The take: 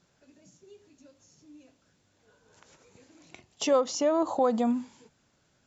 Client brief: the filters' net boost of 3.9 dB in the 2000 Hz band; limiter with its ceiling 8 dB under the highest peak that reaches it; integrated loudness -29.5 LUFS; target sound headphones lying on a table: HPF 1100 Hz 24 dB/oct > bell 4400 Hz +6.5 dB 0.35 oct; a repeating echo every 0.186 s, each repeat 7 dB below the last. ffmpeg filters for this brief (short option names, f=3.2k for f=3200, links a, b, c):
-af "equalizer=f=2k:t=o:g=5,alimiter=limit=-21dB:level=0:latency=1,highpass=f=1.1k:w=0.5412,highpass=f=1.1k:w=1.3066,equalizer=f=4.4k:t=o:w=0.35:g=6.5,aecho=1:1:186|372|558|744|930:0.447|0.201|0.0905|0.0407|0.0183,volume=6.5dB"